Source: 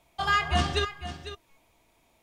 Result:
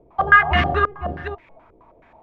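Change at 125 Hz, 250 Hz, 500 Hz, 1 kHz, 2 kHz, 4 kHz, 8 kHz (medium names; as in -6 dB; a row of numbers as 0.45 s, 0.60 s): +6.0 dB, +6.5 dB, +8.5 dB, +10.0 dB, +13.5 dB, -0.5 dB, under -15 dB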